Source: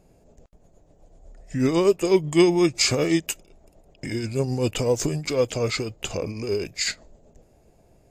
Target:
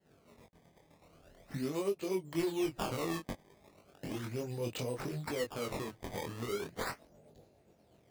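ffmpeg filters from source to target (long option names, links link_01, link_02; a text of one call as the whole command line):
ffmpeg -i in.wav -af "agate=range=-33dB:threshold=-52dB:ratio=3:detection=peak,highpass=100,acompressor=threshold=-36dB:ratio=2.5,acrusher=samples=18:mix=1:aa=0.000001:lfo=1:lforange=28.8:lforate=0.37,flanger=delay=20:depth=5.7:speed=0.55" out.wav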